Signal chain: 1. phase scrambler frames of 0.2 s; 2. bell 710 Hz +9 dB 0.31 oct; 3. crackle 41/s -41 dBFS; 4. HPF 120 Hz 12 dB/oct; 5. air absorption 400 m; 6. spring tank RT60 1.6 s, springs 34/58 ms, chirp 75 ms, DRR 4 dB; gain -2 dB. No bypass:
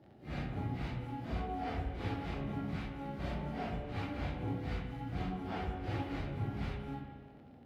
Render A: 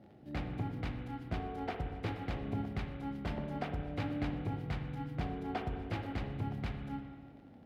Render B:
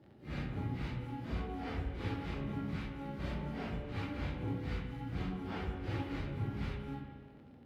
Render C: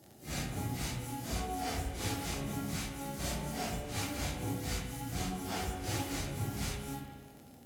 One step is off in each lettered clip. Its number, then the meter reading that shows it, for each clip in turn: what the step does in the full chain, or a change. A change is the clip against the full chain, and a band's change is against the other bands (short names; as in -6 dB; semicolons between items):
1, crest factor change +1.5 dB; 2, 1 kHz band -4.0 dB; 5, 4 kHz band +9.5 dB